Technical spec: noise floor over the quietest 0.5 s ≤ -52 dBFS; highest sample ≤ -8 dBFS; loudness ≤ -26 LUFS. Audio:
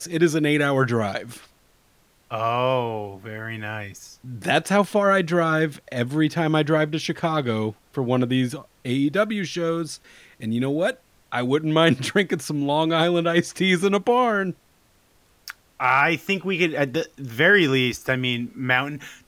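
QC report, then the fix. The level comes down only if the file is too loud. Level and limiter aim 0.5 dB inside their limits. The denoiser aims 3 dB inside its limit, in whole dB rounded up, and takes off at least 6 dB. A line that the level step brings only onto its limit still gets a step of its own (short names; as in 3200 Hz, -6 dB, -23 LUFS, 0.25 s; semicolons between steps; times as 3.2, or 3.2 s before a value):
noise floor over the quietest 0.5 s -60 dBFS: OK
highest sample -6.0 dBFS: fail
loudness -22.0 LUFS: fail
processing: gain -4.5 dB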